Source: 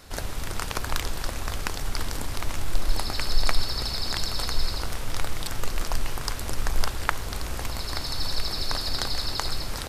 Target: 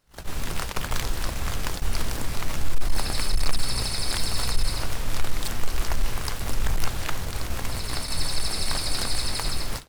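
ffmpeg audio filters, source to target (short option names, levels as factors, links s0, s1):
-filter_complex "[0:a]volume=7.08,asoftclip=hard,volume=0.141,asplit=4[s0][s1][s2][s3];[s1]asetrate=22050,aresample=44100,atempo=2,volume=0.224[s4];[s2]asetrate=52444,aresample=44100,atempo=0.840896,volume=0.178[s5];[s3]asetrate=88200,aresample=44100,atempo=0.5,volume=0.631[s6];[s0][s4][s5][s6]amix=inputs=4:normalize=0,agate=range=0.0708:threshold=0.0447:ratio=16:detection=peak"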